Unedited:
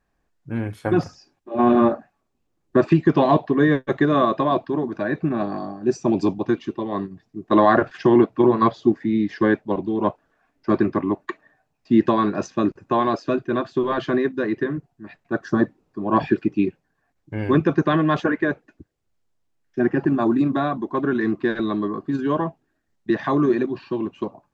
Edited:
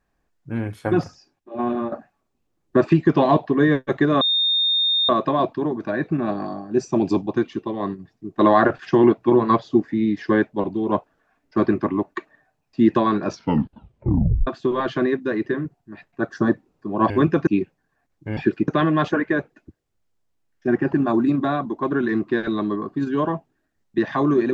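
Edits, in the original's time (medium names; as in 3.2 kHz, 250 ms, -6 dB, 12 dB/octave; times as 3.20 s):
0.90–1.92 s: fade out, to -12 dB
4.21 s: add tone 3.66 kHz -16.5 dBFS 0.88 s
12.37 s: tape stop 1.22 s
16.22–16.53 s: swap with 17.43–17.80 s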